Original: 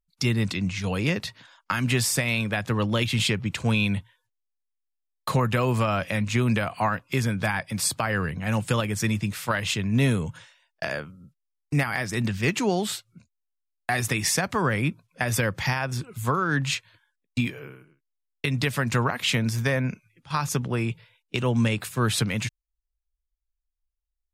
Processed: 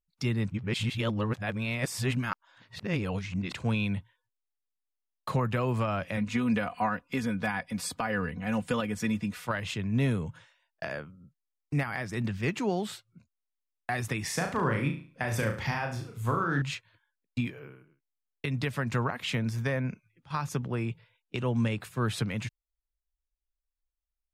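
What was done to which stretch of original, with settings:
0.5–3.53 reverse
6.17–9.47 comb 4.1 ms
14.26–16.62 flutter echo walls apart 6.1 m, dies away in 0.41 s
whole clip: high shelf 3300 Hz -9 dB; gain -5 dB

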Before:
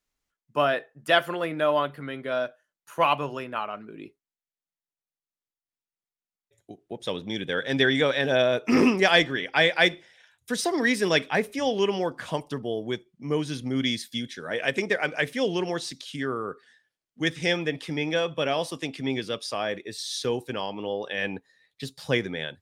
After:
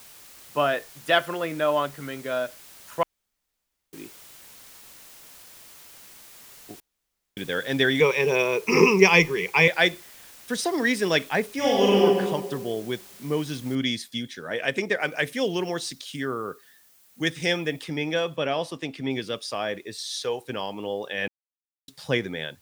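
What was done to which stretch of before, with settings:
3.03–3.93 room tone
6.8–7.37 room tone
8–9.68 ripple EQ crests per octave 0.79, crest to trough 18 dB
11.56–12.04 reverb throw, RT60 1.5 s, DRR -5.5 dB
13.75 noise floor step -48 dB -63 dB
15–17.84 high shelf 8200 Hz +8 dB
18.36–19.11 high shelf 5800 Hz -7.5 dB
20.01–20.45 resonant low shelf 400 Hz -9 dB, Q 1.5
21.28–21.88 mute

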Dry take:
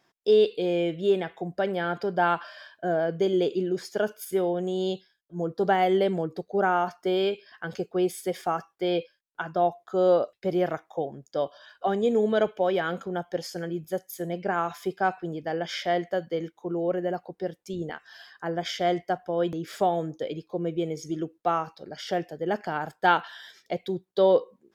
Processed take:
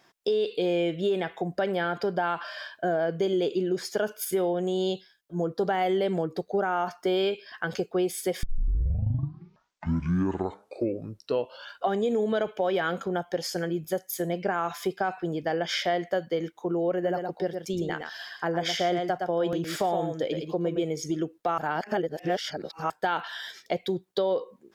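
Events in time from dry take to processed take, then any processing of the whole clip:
8.43 tape start 3.43 s
16.92–20.84 echo 0.114 s -7.5 dB
21.58–22.9 reverse
whole clip: limiter -17.5 dBFS; low shelf 470 Hz -3 dB; compressor 2:1, threshold -35 dBFS; gain +7.5 dB

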